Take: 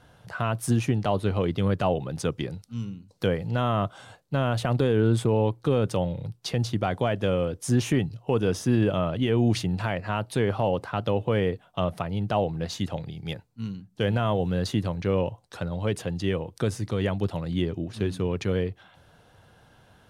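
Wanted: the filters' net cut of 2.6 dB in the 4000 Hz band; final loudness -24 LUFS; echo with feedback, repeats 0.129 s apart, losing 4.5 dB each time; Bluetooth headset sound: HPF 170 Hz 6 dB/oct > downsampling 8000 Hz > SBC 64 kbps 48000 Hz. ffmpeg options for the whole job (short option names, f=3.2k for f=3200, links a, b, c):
-af "highpass=f=170:p=1,equalizer=f=4k:t=o:g=-3.5,aecho=1:1:129|258|387|516|645|774|903|1032|1161:0.596|0.357|0.214|0.129|0.0772|0.0463|0.0278|0.0167|0.01,aresample=8000,aresample=44100,volume=3dB" -ar 48000 -c:a sbc -b:a 64k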